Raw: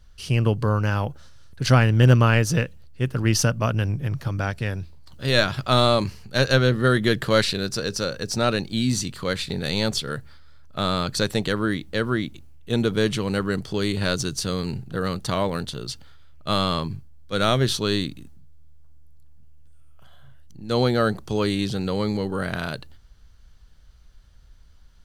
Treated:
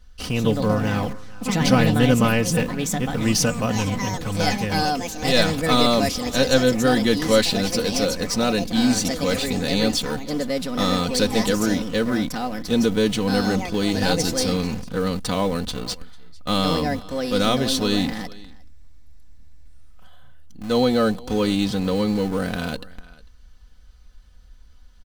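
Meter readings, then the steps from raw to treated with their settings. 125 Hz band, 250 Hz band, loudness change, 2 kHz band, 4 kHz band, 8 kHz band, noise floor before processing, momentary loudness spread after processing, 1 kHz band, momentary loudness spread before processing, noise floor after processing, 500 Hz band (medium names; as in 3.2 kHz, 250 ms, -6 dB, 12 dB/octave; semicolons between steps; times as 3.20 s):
-3.5 dB, +5.0 dB, +1.5 dB, 0.0 dB, +2.5 dB, +4.5 dB, -49 dBFS, 9 LU, +2.0 dB, 12 LU, -46 dBFS, +2.5 dB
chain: delay 448 ms -22 dB; in parallel at -12 dB: Schmitt trigger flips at -32 dBFS; on the sum: ever faster or slower copies 202 ms, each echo +4 st, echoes 3, each echo -6 dB; dynamic bell 1.5 kHz, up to -5 dB, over -34 dBFS, Q 1.2; comb 4 ms, depth 63%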